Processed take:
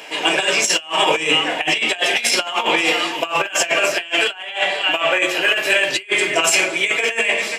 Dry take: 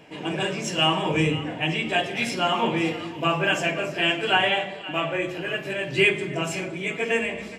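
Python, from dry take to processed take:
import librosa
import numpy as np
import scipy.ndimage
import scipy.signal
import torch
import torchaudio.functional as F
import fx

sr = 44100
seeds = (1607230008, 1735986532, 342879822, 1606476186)

y = scipy.signal.sosfilt(scipy.signal.butter(2, 540.0, 'highpass', fs=sr, output='sos'), x)
y = fx.high_shelf(y, sr, hz=2400.0, db=9.0)
y = fx.over_compress(y, sr, threshold_db=-27.0, ratio=-0.5)
y = F.gain(torch.from_numpy(y), 9.0).numpy()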